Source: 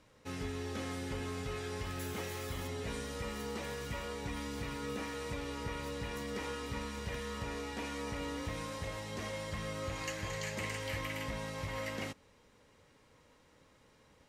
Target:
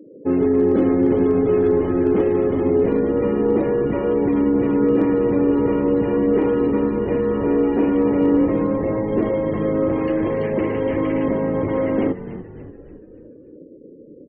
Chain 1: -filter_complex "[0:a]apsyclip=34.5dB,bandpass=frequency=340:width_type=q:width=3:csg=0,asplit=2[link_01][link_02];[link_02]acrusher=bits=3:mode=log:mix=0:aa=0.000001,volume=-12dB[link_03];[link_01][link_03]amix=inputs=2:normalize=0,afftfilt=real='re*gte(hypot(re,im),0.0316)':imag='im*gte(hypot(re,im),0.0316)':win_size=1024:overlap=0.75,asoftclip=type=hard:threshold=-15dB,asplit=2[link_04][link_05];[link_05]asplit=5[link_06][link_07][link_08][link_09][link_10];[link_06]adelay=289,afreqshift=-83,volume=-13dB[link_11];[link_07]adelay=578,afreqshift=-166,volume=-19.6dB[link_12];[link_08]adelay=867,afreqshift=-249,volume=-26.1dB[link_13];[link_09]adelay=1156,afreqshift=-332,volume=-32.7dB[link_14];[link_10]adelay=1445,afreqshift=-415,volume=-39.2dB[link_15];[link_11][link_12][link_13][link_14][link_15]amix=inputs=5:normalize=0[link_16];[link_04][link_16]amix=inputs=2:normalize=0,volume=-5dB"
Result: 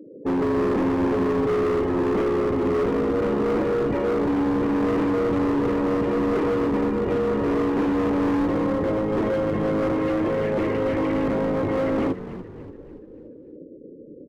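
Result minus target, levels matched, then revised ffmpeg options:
hard clipping: distortion +33 dB
-filter_complex "[0:a]apsyclip=34.5dB,bandpass=frequency=340:width_type=q:width=3:csg=0,asplit=2[link_01][link_02];[link_02]acrusher=bits=3:mode=log:mix=0:aa=0.000001,volume=-12dB[link_03];[link_01][link_03]amix=inputs=2:normalize=0,afftfilt=real='re*gte(hypot(re,im),0.0316)':imag='im*gte(hypot(re,im),0.0316)':win_size=1024:overlap=0.75,asoftclip=type=hard:threshold=-4dB,asplit=2[link_04][link_05];[link_05]asplit=5[link_06][link_07][link_08][link_09][link_10];[link_06]adelay=289,afreqshift=-83,volume=-13dB[link_11];[link_07]adelay=578,afreqshift=-166,volume=-19.6dB[link_12];[link_08]adelay=867,afreqshift=-249,volume=-26.1dB[link_13];[link_09]adelay=1156,afreqshift=-332,volume=-32.7dB[link_14];[link_10]adelay=1445,afreqshift=-415,volume=-39.2dB[link_15];[link_11][link_12][link_13][link_14][link_15]amix=inputs=5:normalize=0[link_16];[link_04][link_16]amix=inputs=2:normalize=0,volume=-5dB"

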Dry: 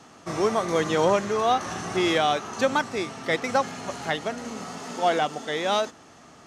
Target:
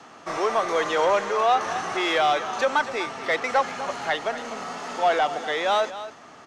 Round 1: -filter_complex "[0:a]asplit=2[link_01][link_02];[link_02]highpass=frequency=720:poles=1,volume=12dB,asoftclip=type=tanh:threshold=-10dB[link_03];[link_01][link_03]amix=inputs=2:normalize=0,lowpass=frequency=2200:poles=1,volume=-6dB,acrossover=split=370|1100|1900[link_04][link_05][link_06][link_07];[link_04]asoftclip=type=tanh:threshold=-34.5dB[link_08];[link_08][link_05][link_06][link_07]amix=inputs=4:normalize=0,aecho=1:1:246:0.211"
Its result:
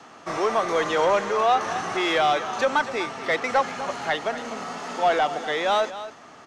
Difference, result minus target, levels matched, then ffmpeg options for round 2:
soft clipping: distortion −4 dB
-filter_complex "[0:a]asplit=2[link_01][link_02];[link_02]highpass=frequency=720:poles=1,volume=12dB,asoftclip=type=tanh:threshold=-10dB[link_03];[link_01][link_03]amix=inputs=2:normalize=0,lowpass=frequency=2200:poles=1,volume=-6dB,acrossover=split=370|1100|1900[link_04][link_05][link_06][link_07];[link_04]asoftclip=type=tanh:threshold=-42dB[link_08];[link_08][link_05][link_06][link_07]amix=inputs=4:normalize=0,aecho=1:1:246:0.211"

